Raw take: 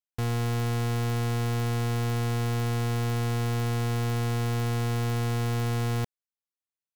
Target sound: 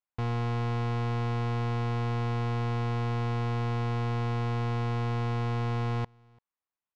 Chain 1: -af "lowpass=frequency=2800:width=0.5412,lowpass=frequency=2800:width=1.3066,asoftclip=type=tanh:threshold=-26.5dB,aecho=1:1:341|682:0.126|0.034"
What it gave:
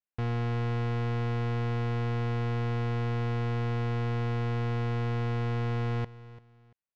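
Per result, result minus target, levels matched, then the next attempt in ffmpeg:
echo-to-direct +12 dB; 1,000 Hz band −3.0 dB
-af "lowpass=frequency=2800:width=0.5412,lowpass=frequency=2800:width=1.3066,asoftclip=type=tanh:threshold=-26.5dB,aecho=1:1:341:0.0335"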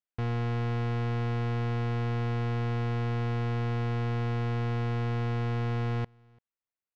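1,000 Hz band −3.0 dB
-af "lowpass=frequency=2800:width=0.5412,lowpass=frequency=2800:width=1.3066,equalizer=frequency=980:width_type=o:width=1:gain=8,asoftclip=type=tanh:threshold=-26.5dB,aecho=1:1:341:0.0335"

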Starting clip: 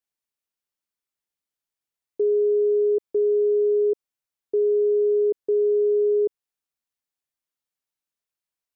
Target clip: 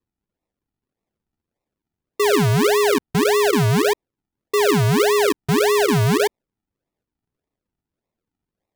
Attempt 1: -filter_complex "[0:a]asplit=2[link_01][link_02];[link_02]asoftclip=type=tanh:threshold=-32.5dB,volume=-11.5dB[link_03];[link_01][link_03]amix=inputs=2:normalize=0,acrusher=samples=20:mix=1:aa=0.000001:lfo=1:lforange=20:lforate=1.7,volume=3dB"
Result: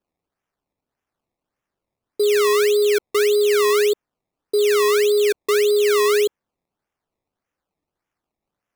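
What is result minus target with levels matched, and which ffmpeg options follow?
sample-and-hold swept by an LFO: distortion −22 dB
-filter_complex "[0:a]asplit=2[link_01][link_02];[link_02]asoftclip=type=tanh:threshold=-32.5dB,volume=-11.5dB[link_03];[link_01][link_03]amix=inputs=2:normalize=0,acrusher=samples=56:mix=1:aa=0.000001:lfo=1:lforange=56:lforate=1.7,volume=3dB"

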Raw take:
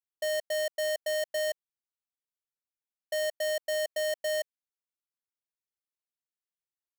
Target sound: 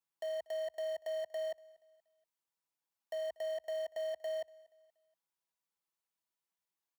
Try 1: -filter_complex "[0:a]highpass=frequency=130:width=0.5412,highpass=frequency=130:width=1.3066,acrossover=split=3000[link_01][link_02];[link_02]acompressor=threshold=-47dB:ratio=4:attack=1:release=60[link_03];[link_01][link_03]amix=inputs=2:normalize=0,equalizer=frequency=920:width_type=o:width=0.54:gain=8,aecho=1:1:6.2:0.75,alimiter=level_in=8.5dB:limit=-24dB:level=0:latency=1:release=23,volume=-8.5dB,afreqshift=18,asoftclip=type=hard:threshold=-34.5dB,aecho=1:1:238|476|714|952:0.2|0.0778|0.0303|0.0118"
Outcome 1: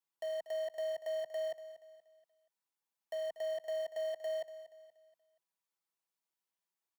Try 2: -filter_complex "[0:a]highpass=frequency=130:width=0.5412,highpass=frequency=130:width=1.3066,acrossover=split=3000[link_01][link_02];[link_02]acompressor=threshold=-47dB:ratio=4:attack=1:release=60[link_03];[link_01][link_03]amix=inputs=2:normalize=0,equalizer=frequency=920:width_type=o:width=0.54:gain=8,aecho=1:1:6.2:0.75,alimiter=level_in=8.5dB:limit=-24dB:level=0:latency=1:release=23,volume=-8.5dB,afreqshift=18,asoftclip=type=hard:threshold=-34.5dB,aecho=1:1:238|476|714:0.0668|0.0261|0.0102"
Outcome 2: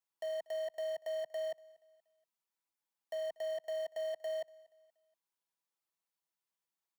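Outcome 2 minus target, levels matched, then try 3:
125 Hz band +2.5 dB
-filter_complex "[0:a]highpass=frequency=40:width=0.5412,highpass=frequency=40:width=1.3066,acrossover=split=3000[link_01][link_02];[link_02]acompressor=threshold=-47dB:ratio=4:attack=1:release=60[link_03];[link_01][link_03]amix=inputs=2:normalize=0,equalizer=frequency=920:width_type=o:width=0.54:gain=8,aecho=1:1:6.2:0.75,alimiter=level_in=8.5dB:limit=-24dB:level=0:latency=1:release=23,volume=-8.5dB,afreqshift=18,asoftclip=type=hard:threshold=-34.5dB,aecho=1:1:238|476|714:0.0668|0.0261|0.0102"

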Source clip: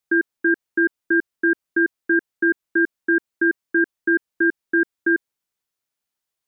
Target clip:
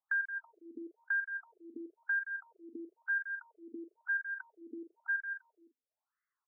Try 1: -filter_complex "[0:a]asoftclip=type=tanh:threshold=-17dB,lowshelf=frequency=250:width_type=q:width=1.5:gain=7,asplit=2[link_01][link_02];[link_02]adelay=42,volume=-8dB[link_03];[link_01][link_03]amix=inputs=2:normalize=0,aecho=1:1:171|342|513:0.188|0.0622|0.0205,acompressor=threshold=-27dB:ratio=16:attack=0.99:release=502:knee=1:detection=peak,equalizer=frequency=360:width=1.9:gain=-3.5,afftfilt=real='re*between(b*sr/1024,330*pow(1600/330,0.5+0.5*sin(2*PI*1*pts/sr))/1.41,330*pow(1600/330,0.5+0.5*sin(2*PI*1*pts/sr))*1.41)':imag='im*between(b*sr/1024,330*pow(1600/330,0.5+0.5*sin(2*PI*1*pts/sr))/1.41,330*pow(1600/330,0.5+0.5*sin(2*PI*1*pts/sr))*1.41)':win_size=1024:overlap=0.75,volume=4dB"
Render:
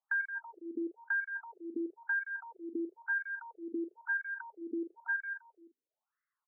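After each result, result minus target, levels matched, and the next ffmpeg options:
soft clipping: distortion +16 dB; 500 Hz band +10.0 dB
-filter_complex "[0:a]asoftclip=type=tanh:threshold=-6.5dB,lowshelf=frequency=250:width_type=q:width=1.5:gain=7,asplit=2[link_01][link_02];[link_02]adelay=42,volume=-8dB[link_03];[link_01][link_03]amix=inputs=2:normalize=0,aecho=1:1:171|342|513:0.188|0.0622|0.0205,acompressor=threshold=-27dB:ratio=16:attack=0.99:release=502:knee=1:detection=peak,equalizer=frequency=360:width=1.9:gain=-3.5,afftfilt=real='re*between(b*sr/1024,330*pow(1600/330,0.5+0.5*sin(2*PI*1*pts/sr))/1.41,330*pow(1600/330,0.5+0.5*sin(2*PI*1*pts/sr))*1.41)':imag='im*between(b*sr/1024,330*pow(1600/330,0.5+0.5*sin(2*PI*1*pts/sr))/1.41,330*pow(1600/330,0.5+0.5*sin(2*PI*1*pts/sr))*1.41)':win_size=1024:overlap=0.75,volume=4dB"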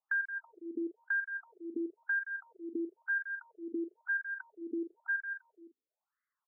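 500 Hz band +10.0 dB
-filter_complex "[0:a]asoftclip=type=tanh:threshold=-6.5dB,lowshelf=frequency=250:width_type=q:width=1.5:gain=7,asplit=2[link_01][link_02];[link_02]adelay=42,volume=-8dB[link_03];[link_01][link_03]amix=inputs=2:normalize=0,aecho=1:1:171|342|513:0.188|0.0622|0.0205,acompressor=threshold=-27dB:ratio=16:attack=0.99:release=502:knee=1:detection=peak,equalizer=frequency=360:width=1.9:gain=-14,afftfilt=real='re*between(b*sr/1024,330*pow(1600/330,0.5+0.5*sin(2*PI*1*pts/sr))/1.41,330*pow(1600/330,0.5+0.5*sin(2*PI*1*pts/sr))*1.41)':imag='im*between(b*sr/1024,330*pow(1600/330,0.5+0.5*sin(2*PI*1*pts/sr))/1.41,330*pow(1600/330,0.5+0.5*sin(2*PI*1*pts/sr))*1.41)':win_size=1024:overlap=0.75,volume=4dB"

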